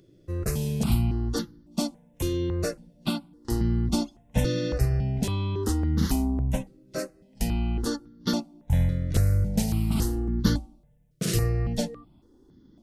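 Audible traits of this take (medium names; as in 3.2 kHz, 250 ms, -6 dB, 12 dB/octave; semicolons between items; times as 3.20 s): notches that jump at a steady rate 3.6 Hz 230–2500 Hz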